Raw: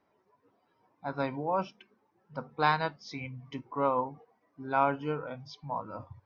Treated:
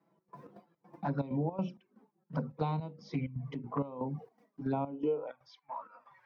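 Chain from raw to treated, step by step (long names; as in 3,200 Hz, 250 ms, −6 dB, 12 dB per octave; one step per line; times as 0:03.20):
mains-hum notches 60/120/180/240/300/360/420/480/540/600 Hz
noise gate with hold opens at −59 dBFS
tilt shelving filter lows +4.5 dB, from 0:04.72 lows +9 dB
downward compressor 8 to 1, threshold −27 dBFS, peak gain reduction 9 dB
high-pass filter sweep 160 Hz → 1,900 Hz, 0:04.83–0:05.53
flanger swept by the level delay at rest 6 ms, full sweep at −27.5 dBFS
gate pattern "xx.xx.xx..x" 161 BPM −12 dB
multiband upward and downward compressor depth 70%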